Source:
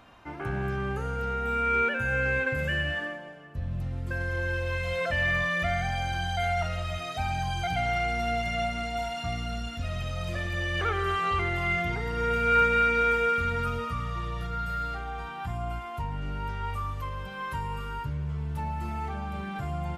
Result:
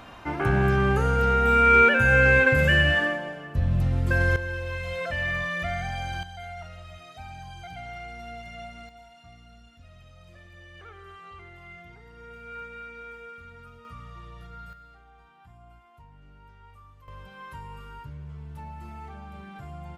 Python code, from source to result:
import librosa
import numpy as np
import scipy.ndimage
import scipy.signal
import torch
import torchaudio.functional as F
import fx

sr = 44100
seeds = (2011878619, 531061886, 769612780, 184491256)

y = fx.gain(x, sr, db=fx.steps((0.0, 9.0), (4.36, -2.0), (6.23, -11.5), (8.89, -18.5), (13.85, -11.0), (14.73, -19.0), (17.08, -8.0)))